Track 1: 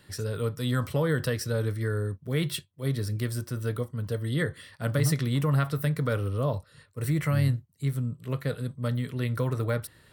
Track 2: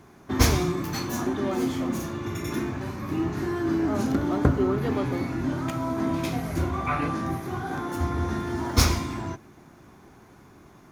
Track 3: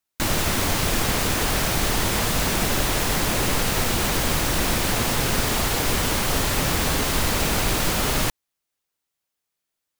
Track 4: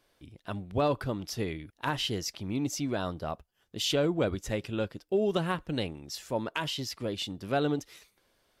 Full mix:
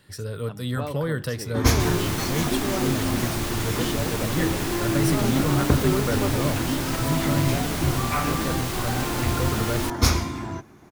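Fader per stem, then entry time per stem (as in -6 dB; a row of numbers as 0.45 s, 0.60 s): -0.5 dB, +0.5 dB, -7.5 dB, -6.0 dB; 0.00 s, 1.25 s, 1.60 s, 0.00 s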